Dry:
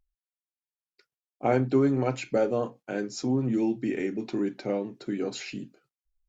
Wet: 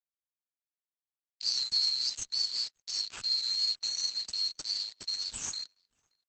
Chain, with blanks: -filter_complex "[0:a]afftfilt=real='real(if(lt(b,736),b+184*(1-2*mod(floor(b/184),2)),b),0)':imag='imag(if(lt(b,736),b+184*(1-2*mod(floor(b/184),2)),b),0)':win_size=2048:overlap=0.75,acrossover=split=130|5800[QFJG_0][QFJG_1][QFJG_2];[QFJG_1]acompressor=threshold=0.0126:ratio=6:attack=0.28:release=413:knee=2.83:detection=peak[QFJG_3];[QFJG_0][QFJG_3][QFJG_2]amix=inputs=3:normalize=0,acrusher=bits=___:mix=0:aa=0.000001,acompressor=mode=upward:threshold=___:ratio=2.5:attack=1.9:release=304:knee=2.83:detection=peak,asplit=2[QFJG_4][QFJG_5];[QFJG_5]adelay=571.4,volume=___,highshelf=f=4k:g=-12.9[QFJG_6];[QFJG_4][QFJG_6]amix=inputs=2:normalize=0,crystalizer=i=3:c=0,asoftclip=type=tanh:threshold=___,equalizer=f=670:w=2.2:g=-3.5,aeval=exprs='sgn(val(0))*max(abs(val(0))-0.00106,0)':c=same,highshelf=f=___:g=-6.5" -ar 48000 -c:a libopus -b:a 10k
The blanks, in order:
6, 0.0158, 0.0794, 0.2, 6k